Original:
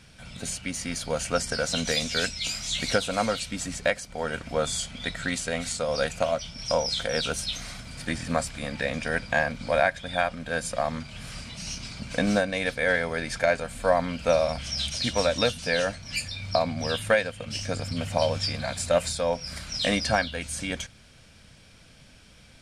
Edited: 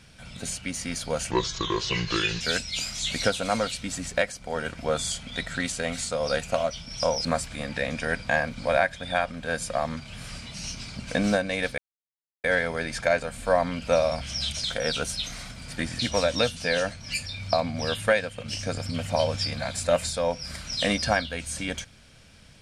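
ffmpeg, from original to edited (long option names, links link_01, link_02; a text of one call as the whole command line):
ffmpeg -i in.wav -filter_complex "[0:a]asplit=7[link_01][link_02][link_03][link_04][link_05][link_06][link_07];[link_01]atrim=end=1.314[link_08];[link_02]atrim=start=1.31:end=2.09,asetpts=PTS-STARTPTS,asetrate=31311,aresample=44100[link_09];[link_03]atrim=start=2.086:end=6.932[link_10];[link_04]atrim=start=8.278:end=12.81,asetpts=PTS-STARTPTS,afade=type=out:start_time=4.528:duration=0.004:curve=hsin,apad=pad_dur=0.66[link_11];[link_05]atrim=start=12.81:end=15.012,asetpts=PTS-STARTPTS,afade=type=in:duration=0.004:curve=hsin[link_12];[link_06]atrim=start=6.928:end=8.282[link_13];[link_07]atrim=start=15.008[link_14];[link_08][link_09]acrossfade=duration=0.004:curve1=hsin:curve2=hsin[link_15];[link_15][link_10]acrossfade=duration=0.004:curve1=hsin:curve2=hsin[link_16];[link_11][link_12]concat=n=2:v=0:a=1[link_17];[link_16][link_17]acrossfade=duration=0.004:curve1=hsin:curve2=hsin[link_18];[link_18][link_13]acrossfade=duration=0.004:curve1=hsin:curve2=hsin[link_19];[link_19][link_14]acrossfade=duration=0.004:curve1=hsin:curve2=hsin" out.wav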